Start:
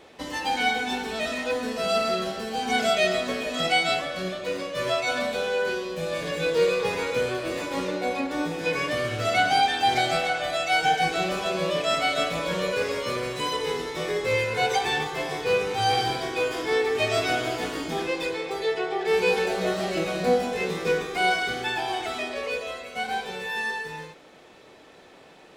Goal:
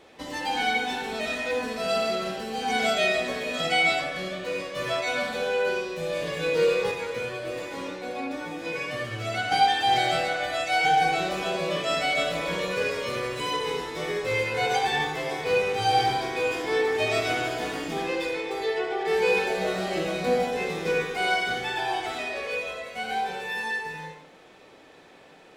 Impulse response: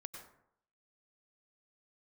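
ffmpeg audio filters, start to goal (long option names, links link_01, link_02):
-filter_complex "[1:a]atrim=start_sample=2205,asetrate=66150,aresample=44100[link_01];[0:a][link_01]afir=irnorm=-1:irlink=0,asettb=1/sr,asplit=3[link_02][link_03][link_04];[link_02]atrim=end=6.914[link_05];[link_03]atrim=start=6.91:end=9.52,asetpts=PTS-STARTPTS,afade=type=in:duration=0.004:curve=qsin,afade=type=out:start_time=2.606:duration=0.004:curve=qsin,flanger=delay=8:depth=1.4:regen=48:speed=1.5:shape=triangular[link_06];[link_04]atrim=start=9.516[link_07];[link_05][link_06]acrossfade=duration=0.004:curve1=hsin:curve2=qsin[link_08];[link_08][link_07]acrossfade=duration=0.004:curve1=qsin:curve2=hsin,volume=6.5dB"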